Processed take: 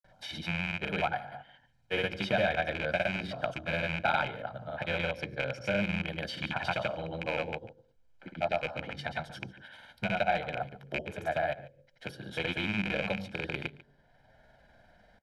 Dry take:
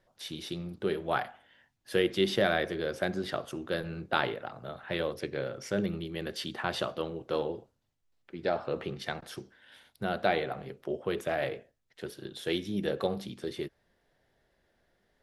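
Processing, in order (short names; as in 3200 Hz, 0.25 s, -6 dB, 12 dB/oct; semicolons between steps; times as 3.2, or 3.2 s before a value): rattling part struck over -38 dBFS, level -19 dBFS; high shelf 8600 Hz -8.5 dB; de-hum 47.39 Hz, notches 12; grains 0.1 s, grains 20/s, pitch spread up and down by 0 st; high shelf 3900 Hz -7.5 dB; comb 1.3 ms, depth 73%; echo 0.144 s -20.5 dB; three-band squash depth 40%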